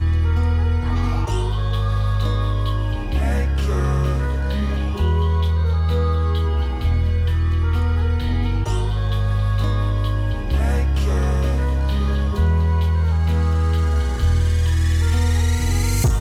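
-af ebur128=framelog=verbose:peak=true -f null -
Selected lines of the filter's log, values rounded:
Integrated loudness:
  I:         -20.4 LUFS
  Threshold: -30.4 LUFS
Loudness range:
  LRA:         2.2 LU
  Threshold: -40.5 LUFS
  LRA low:   -21.5 LUFS
  LRA high:  -19.2 LUFS
True peak:
  Peak:       -7.9 dBFS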